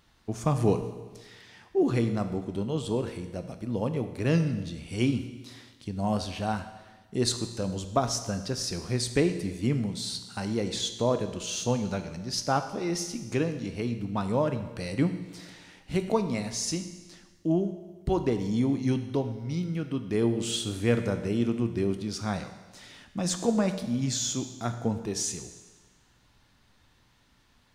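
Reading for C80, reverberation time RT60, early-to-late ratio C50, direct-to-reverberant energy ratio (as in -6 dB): 11.5 dB, 1.3 s, 10.0 dB, 8.0 dB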